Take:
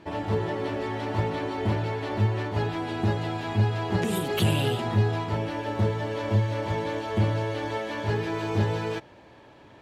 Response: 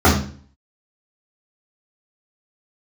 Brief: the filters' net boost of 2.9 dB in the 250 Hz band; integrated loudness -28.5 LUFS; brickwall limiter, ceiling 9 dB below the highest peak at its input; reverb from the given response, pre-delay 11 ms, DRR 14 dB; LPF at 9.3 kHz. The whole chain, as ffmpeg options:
-filter_complex "[0:a]lowpass=9300,equalizer=f=250:t=o:g=4,alimiter=limit=0.106:level=0:latency=1,asplit=2[s0][s1];[1:a]atrim=start_sample=2205,adelay=11[s2];[s1][s2]afir=irnorm=-1:irlink=0,volume=0.0106[s3];[s0][s3]amix=inputs=2:normalize=0,volume=0.944"

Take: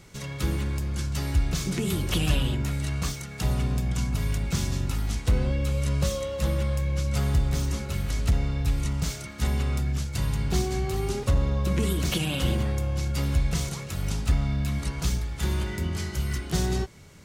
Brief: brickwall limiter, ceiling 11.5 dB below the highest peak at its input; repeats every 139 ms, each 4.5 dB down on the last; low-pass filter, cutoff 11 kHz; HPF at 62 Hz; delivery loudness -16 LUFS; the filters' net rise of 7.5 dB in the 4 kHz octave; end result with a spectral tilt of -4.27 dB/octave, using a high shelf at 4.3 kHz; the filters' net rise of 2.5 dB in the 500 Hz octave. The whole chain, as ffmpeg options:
-af "highpass=62,lowpass=11000,equalizer=f=500:t=o:g=3,equalizer=f=4000:t=o:g=8,highshelf=f=4300:g=3,alimiter=limit=0.1:level=0:latency=1,aecho=1:1:139|278|417|556|695|834|973|1112|1251:0.596|0.357|0.214|0.129|0.0772|0.0463|0.0278|0.0167|0.01,volume=4.22"

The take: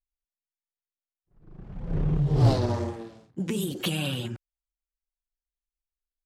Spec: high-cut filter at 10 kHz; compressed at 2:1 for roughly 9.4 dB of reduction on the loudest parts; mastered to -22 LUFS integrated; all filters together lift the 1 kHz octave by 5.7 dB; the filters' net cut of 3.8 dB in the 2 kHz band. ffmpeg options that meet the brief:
-af "lowpass=10000,equalizer=f=1000:t=o:g=9,equalizer=f=2000:t=o:g=-8,acompressor=threshold=0.0251:ratio=2,volume=3.76"

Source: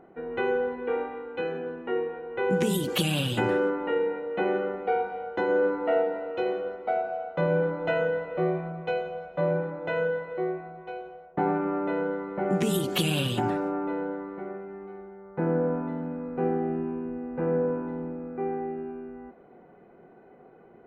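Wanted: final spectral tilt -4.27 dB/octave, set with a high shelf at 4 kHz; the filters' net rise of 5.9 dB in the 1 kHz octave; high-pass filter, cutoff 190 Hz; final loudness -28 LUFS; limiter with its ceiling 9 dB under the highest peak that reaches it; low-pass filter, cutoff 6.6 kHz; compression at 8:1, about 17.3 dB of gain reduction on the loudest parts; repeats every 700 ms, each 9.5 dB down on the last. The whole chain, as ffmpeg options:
-af "highpass=190,lowpass=6600,equalizer=f=1000:t=o:g=9,highshelf=f=4000:g=-8,acompressor=threshold=0.0141:ratio=8,alimiter=level_in=2.99:limit=0.0631:level=0:latency=1,volume=0.335,aecho=1:1:700|1400|2100|2800:0.335|0.111|0.0365|0.012,volume=5.01"

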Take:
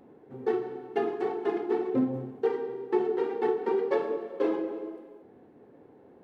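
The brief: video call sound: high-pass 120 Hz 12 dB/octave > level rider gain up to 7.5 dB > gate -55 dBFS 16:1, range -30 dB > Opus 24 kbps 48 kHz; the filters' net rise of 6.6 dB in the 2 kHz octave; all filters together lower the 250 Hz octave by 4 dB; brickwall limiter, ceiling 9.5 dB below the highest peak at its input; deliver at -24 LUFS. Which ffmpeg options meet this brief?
-af "equalizer=f=250:t=o:g=-6,equalizer=f=2000:t=o:g=8,alimiter=limit=0.0631:level=0:latency=1,highpass=120,dynaudnorm=m=2.37,agate=range=0.0316:threshold=0.00178:ratio=16,volume=3.35" -ar 48000 -c:a libopus -b:a 24k

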